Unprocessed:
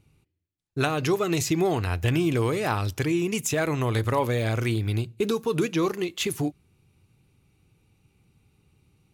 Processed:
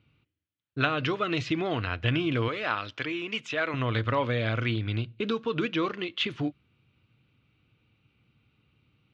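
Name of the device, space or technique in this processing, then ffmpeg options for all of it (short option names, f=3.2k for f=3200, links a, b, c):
guitar cabinet: -filter_complex "[0:a]asettb=1/sr,asplit=3[a][b][c];[a]atrim=end=2.484[d];[b]atrim=start=2.48:end=3.74,asetpts=PTS-STARTPTS,afade=t=in:d=0.004:c=qsin,afade=t=out:st=1.256:d=0.004:c=qsin,highpass=f=500:p=1[e];[c]atrim=start=3.736[f];[d][e]acrossfade=d=0.004:c1=hsin:c2=qsin[g];[g][f]acrossfade=d=0.004:c1=qsin:c2=hsin,highpass=87,equalizer=f=87:t=q:w=4:g=-6,equalizer=f=170:t=q:w=4:g=-8,equalizer=f=390:t=q:w=4:g=-9,equalizer=f=820:t=q:w=4:g=-8,equalizer=f=1.4k:t=q:w=4:g=4,equalizer=f=3.1k:t=q:w=4:g=5,lowpass=f=3.8k:w=0.5412,lowpass=f=3.8k:w=1.3066"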